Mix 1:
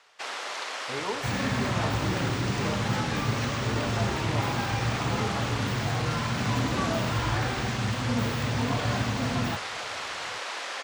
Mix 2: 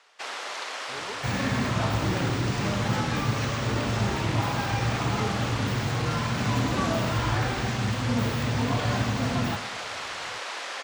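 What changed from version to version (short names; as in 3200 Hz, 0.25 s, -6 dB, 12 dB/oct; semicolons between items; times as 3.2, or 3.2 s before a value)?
speech -8.0 dB; reverb: on, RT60 0.55 s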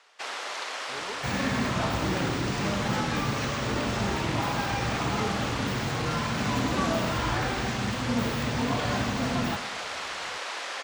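master: add bell 110 Hz -8 dB 0.42 oct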